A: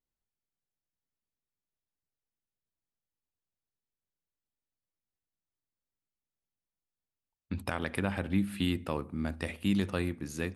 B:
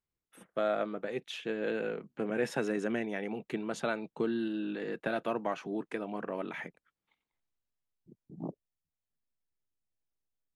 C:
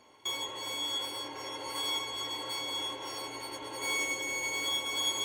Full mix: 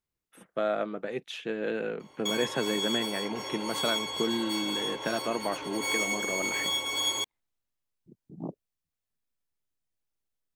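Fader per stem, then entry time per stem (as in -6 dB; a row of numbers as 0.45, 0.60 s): off, +2.0 dB, +2.5 dB; off, 0.00 s, 2.00 s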